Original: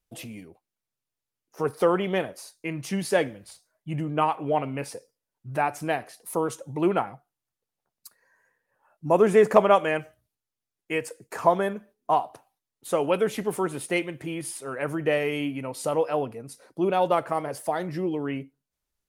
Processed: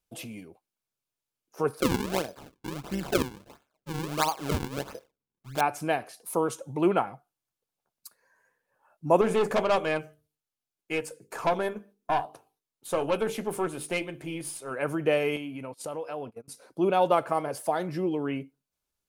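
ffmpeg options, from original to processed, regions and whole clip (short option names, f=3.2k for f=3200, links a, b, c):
-filter_complex "[0:a]asettb=1/sr,asplit=3[a][b][c];[a]atrim=end=1.804[d];[b]atrim=start=1.8:end=5.61,asetpts=PTS-STARTPTS,afade=t=in:d=0.004:c=qsin,afade=t=out:st=3.806:d=0.004:c=qsin,tremolo=f=140:d=0.667,acrusher=samples=40:mix=1:aa=0.000001:lfo=1:lforange=64:lforate=1.5[e];[c]atrim=start=5.606[f];[d][e]acrossfade=d=0.004:c1=hsin:c2=qsin[g];[g][f]acrossfade=d=0.004:c1=qsin:c2=hsin,asettb=1/sr,asplit=3[h][i][j];[h]atrim=end=9.214[k];[i]atrim=start=9.21:end=14.71,asetpts=PTS-STARTPTS,afade=t=in:d=0.004:c=qsin,afade=t=out:st=5.496:d=0.004:c=qsin,bandreject=f=50:t=h:w=6,bandreject=f=100:t=h:w=6,bandreject=f=150:t=h:w=6,bandreject=f=200:t=h:w=6,bandreject=f=250:t=h:w=6,bandreject=f=300:t=h:w=6,bandreject=f=350:t=h:w=6,bandreject=f=400:t=h:w=6,bandreject=f=450:t=h:w=6,bandreject=f=500:t=h:w=6,aeval=exprs='(tanh(8.91*val(0)+0.5)-tanh(0.5))/8.91':c=same,asplit=2[l][m];[m]adelay=13,volume=-14dB[n];[l][n]amix=inputs=2:normalize=0,atrim=end_sample=242550[o];[j]atrim=start=14.706[p];[k][o]acrossfade=d=0.004:c1=hsin:c2=qsin[q];[q][p]acrossfade=d=0.004:c1=qsin:c2=hsin,asettb=1/sr,asplit=3[r][s][t];[r]atrim=end=15.364[u];[s]atrim=start=15.36:end=16.48,asetpts=PTS-STARTPTS,afade=t=in:d=0.004:c=qsin,afade=t=out:st=1.116:d=0.004:c=qsin,agate=range=-25dB:threshold=-37dB:ratio=16:release=100:detection=peak,acompressor=threshold=-34dB:ratio=3:attack=3.2:release=140:knee=1:detection=peak[v];[t]atrim=start=16.476[w];[u][v]acrossfade=d=0.004:c1=hsin:c2=qsin[x];[x][w]acrossfade=d=0.004:c1=qsin:c2=hsin,lowshelf=f=90:g=-6.5,bandreject=f=1.9k:w=9.2"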